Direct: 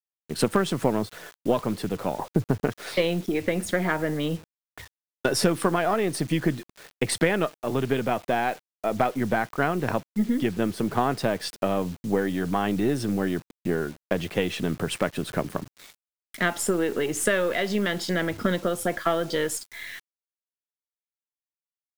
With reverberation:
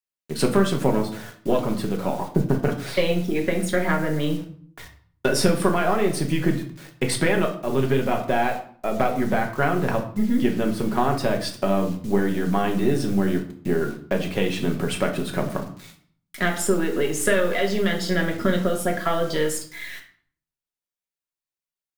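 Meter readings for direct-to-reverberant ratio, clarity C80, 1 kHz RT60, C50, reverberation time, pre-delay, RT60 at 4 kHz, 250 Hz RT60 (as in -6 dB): 2.0 dB, 14.0 dB, 0.55 s, 10.0 dB, 0.50 s, 3 ms, 0.40 s, 0.75 s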